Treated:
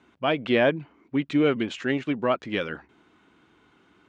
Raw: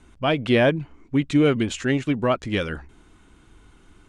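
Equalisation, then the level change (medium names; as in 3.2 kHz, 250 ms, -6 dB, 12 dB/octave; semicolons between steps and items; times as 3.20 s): high-pass 150 Hz 12 dB/octave; low-pass 3.8 kHz 12 dB/octave; bass shelf 200 Hz -5.5 dB; -1.5 dB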